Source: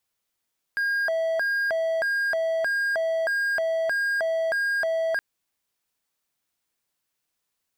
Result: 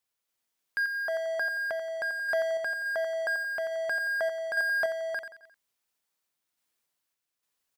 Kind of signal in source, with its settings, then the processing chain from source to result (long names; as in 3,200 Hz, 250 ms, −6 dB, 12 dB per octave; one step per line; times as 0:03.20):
siren hi-lo 653–1,620 Hz 1.6 per second triangle −20 dBFS 4.42 s
low-shelf EQ 200 Hz −5 dB
on a send: repeating echo 88 ms, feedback 39%, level −9 dB
on the sum: sample-and-hold tremolo 3.5 Hz